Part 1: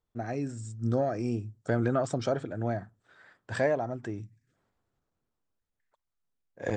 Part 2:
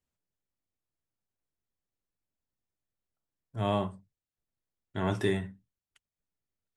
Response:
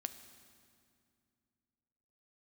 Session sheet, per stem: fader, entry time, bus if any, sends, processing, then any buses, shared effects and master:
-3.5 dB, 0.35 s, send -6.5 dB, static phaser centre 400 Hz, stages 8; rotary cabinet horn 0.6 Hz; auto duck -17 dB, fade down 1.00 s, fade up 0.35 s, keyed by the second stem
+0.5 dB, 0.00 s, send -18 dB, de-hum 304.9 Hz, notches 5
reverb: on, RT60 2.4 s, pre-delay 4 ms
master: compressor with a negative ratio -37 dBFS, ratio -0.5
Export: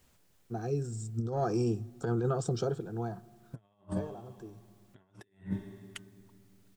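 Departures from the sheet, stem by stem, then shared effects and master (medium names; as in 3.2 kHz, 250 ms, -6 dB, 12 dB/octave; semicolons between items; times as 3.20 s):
stem 2 +0.5 dB -> +12.0 dB; reverb return -8.0 dB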